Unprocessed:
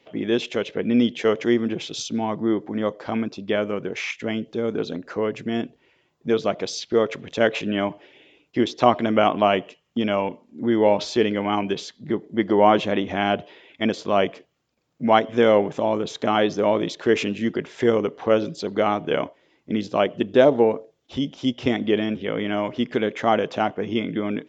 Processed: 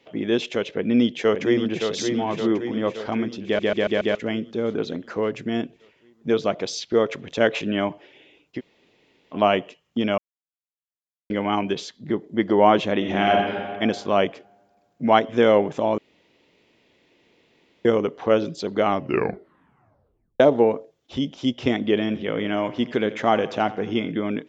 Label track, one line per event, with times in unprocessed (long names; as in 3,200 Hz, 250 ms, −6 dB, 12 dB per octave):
0.760000	1.900000	delay throw 570 ms, feedback 60%, level −6 dB
3.450000	3.450000	stutter in place 0.14 s, 5 plays
8.580000	9.340000	fill with room tone, crossfade 0.06 s
10.180000	11.300000	silence
12.970000	13.380000	thrown reverb, RT60 1.9 s, DRR 0 dB
15.980000	17.850000	fill with room tone
18.860000	18.860000	tape stop 1.54 s
21.930000	24.120000	repeating echo 84 ms, feedback 57%, level −17.5 dB